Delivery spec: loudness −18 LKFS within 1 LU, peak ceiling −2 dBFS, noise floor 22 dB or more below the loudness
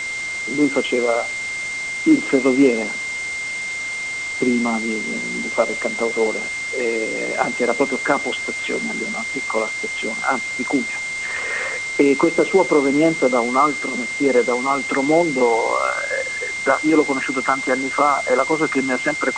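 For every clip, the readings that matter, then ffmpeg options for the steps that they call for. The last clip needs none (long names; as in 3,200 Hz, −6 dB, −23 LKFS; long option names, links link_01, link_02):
interfering tone 2,100 Hz; level of the tone −24 dBFS; background noise floor −27 dBFS; target noise floor −42 dBFS; integrated loudness −19.5 LKFS; sample peak −1.5 dBFS; target loudness −18.0 LKFS
→ -af "bandreject=frequency=2100:width=30"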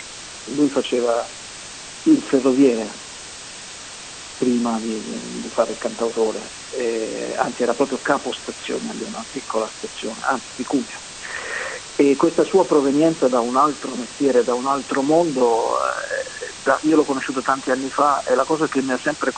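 interfering tone none found; background noise floor −36 dBFS; target noise floor −43 dBFS
→ -af "afftdn=noise_reduction=7:noise_floor=-36"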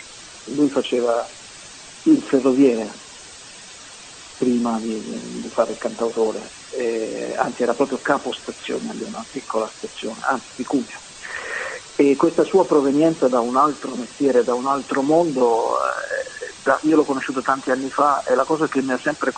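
background noise floor −41 dBFS; target noise floor −43 dBFS
→ -af "afftdn=noise_reduction=6:noise_floor=-41"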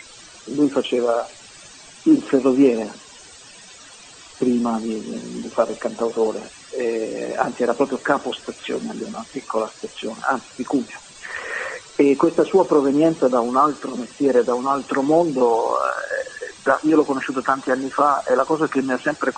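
background noise floor −44 dBFS; integrated loudness −20.5 LKFS; sample peak −1.5 dBFS; target loudness −18.0 LKFS
→ -af "volume=2.5dB,alimiter=limit=-2dB:level=0:latency=1"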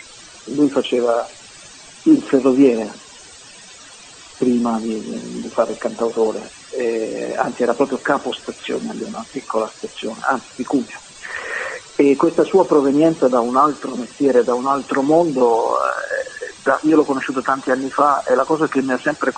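integrated loudness −18.5 LKFS; sample peak −2.0 dBFS; background noise floor −41 dBFS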